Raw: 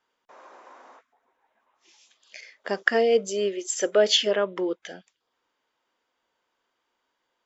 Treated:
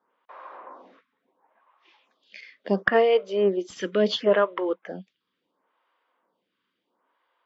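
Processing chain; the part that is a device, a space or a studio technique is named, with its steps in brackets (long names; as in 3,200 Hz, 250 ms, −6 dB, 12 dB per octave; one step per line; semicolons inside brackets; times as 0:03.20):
vibe pedal into a guitar amplifier (phaser with staggered stages 0.72 Hz; tube saturation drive 11 dB, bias 0.25; loudspeaker in its box 100–3,900 Hz, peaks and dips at 190 Hz +10 dB, 290 Hz +4 dB, 530 Hz +3 dB, 1,100 Hz +6 dB)
level +4.5 dB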